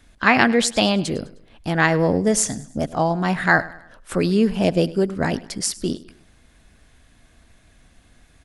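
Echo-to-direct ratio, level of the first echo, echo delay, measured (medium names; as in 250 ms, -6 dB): -18.0 dB, -19.0 dB, 103 ms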